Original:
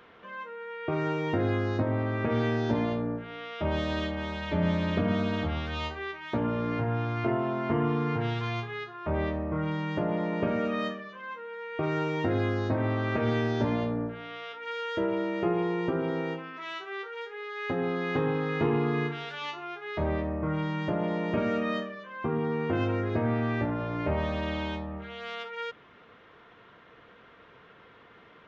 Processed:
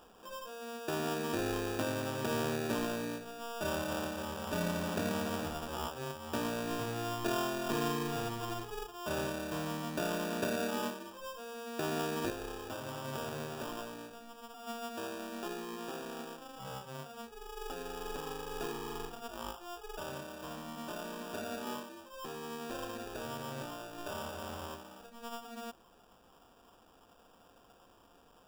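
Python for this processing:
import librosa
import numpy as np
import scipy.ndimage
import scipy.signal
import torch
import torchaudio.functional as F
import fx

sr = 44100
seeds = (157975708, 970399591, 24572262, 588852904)

y = fx.highpass(x, sr, hz=fx.steps((0.0, 360.0), (12.3, 1400.0)), slope=6)
y = fx.sample_hold(y, sr, seeds[0], rate_hz=2100.0, jitter_pct=0)
y = F.gain(torch.from_numpy(y), -3.0).numpy()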